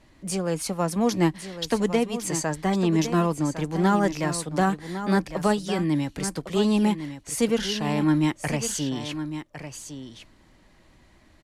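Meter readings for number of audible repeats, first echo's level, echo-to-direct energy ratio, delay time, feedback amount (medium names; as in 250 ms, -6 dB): 1, -10.5 dB, -10.5 dB, 1106 ms, no regular repeats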